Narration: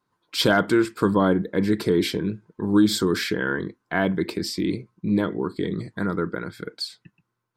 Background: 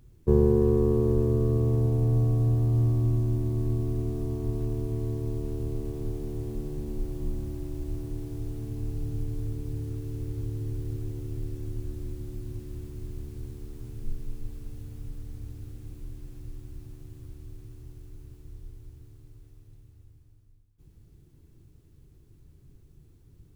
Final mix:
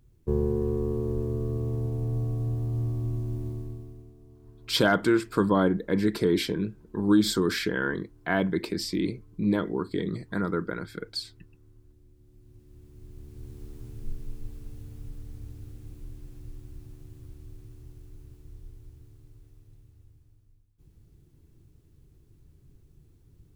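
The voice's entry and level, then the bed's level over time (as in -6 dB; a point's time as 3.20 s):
4.35 s, -3.0 dB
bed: 3.49 s -5.5 dB
4.16 s -22 dB
12.13 s -22 dB
13.62 s -2 dB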